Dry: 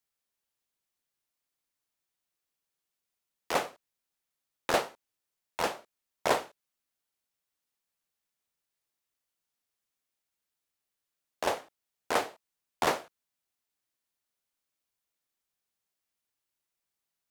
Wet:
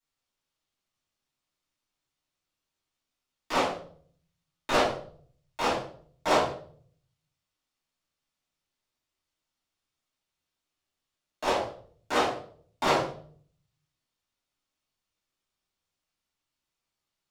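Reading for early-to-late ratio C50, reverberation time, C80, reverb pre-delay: 5.0 dB, 0.50 s, 9.0 dB, 3 ms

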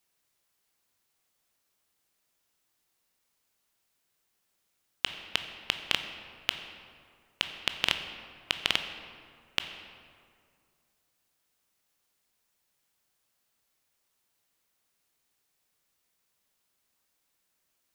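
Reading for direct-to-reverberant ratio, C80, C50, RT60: 7.0 dB, 9.5 dB, 8.5 dB, 2.2 s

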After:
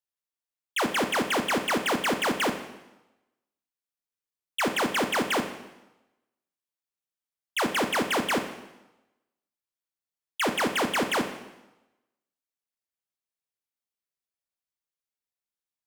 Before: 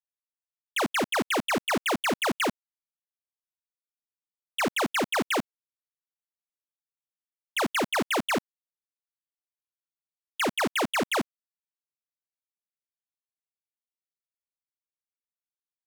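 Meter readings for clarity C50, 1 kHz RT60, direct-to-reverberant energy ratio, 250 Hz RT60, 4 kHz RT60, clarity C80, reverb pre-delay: 9.0 dB, 1.0 s, 6.0 dB, 1.0 s, 0.95 s, 11.0 dB, 6 ms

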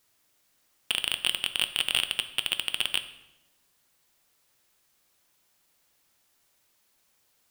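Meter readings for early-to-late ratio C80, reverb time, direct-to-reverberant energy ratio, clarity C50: 15.0 dB, 1.0 s, 9.0 dB, 12.5 dB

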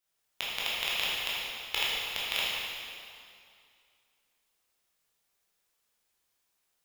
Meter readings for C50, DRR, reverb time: -3.0 dB, -8.0 dB, 2.3 s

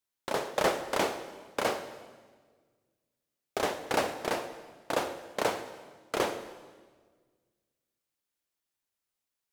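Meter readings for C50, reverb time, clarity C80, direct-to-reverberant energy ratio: 10.5 dB, 1.6 s, 12.0 dB, 10.0 dB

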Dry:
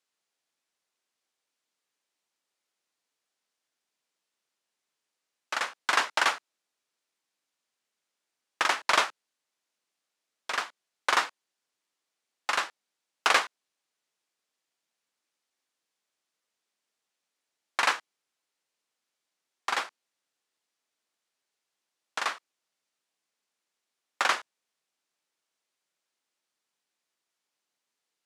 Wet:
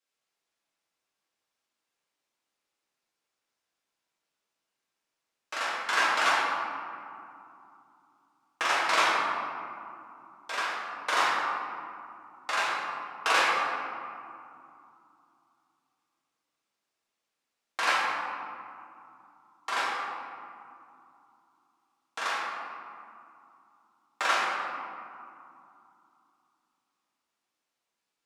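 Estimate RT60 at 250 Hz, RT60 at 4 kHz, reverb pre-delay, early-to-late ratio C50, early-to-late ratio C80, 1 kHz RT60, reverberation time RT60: 3.7 s, 1.1 s, 4 ms, -2.0 dB, 0.0 dB, 2.8 s, 2.7 s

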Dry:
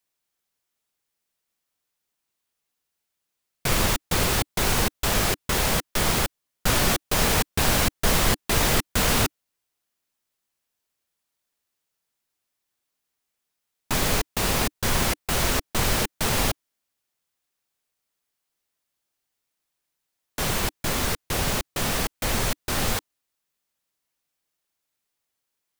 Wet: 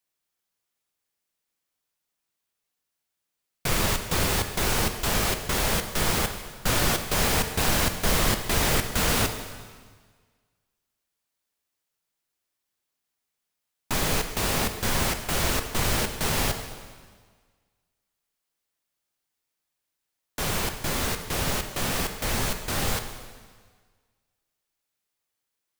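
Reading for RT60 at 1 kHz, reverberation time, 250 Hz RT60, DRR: 1.6 s, 1.6 s, 1.6 s, 6.5 dB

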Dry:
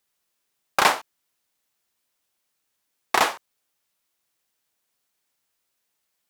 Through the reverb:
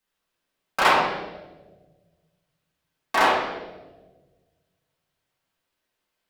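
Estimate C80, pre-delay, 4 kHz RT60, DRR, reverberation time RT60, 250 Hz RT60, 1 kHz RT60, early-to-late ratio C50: 3.5 dB, 3 ms, 0.95 s, -10.0 dB, 1.3 s, 1.9 s, 1.0 s, 0.5 dB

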